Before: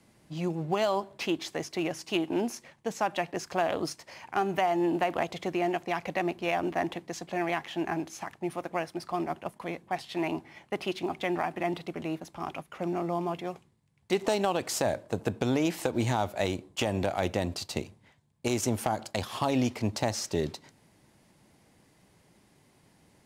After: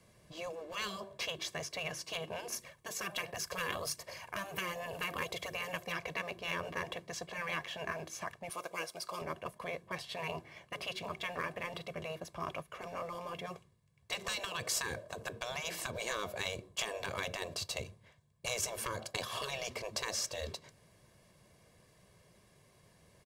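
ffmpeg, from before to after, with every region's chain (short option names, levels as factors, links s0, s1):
-filter_complex "[0:a]asettb=1/sr,asplit=3[s0][s1][s2];[s0]atrim=end=2.524[s3];[s1]atrim=start=2.52:end=5.92,asetpts=PTS-STARTPTS,afade=t=in:d=0.004:c=qsin,afade=t=out:st=3.396:d=0.004:c=qsin,equalizer=f=13000:t=o:w=0.96:g=9,aphaser=in_gain=1:out_gain=1:delay=2.9:decay=0.38:speed=1.3:type=sinusoidal[s4];[s2]atrim=start=5.916[s5];[s3][s4]acrossfade=d=0.004:c1=hsin:c2=qsin[s6];[s6][s5]acrossfade=d=0.004:c1=qsin:c2=hsin,asettb=1/sr,asplit=3[s7][s8][s9];[s7]atrim=end=8.494[s10];[s8]atrim=start=8.49:end=9.22,asetpts=PTS-STARTPTS,afade=t=in:d=0.004:c=qsin,afade=t=out:st=0.726:d=0.004:c=qsin,bass=f=250:g=-14,treble=f=4000:g=7,bandreject=f=1800:w=7.1[s11];[s9]atrim=start=9.216[s12];[s10][s11]acrossfade=d=0.004:c1=hsin:c2=qsin[s13];[s13][s12]acrossfade=d=0.004:c1=qsin:c2=hsin,afftfilt=real='re*lt(hypot(re,im),0.1)':imag='im*lt(hypot(re,im),0.1)':win_size=1024:overlap=0.75,aecho=1:1:1.8:0.62,volume=0.75"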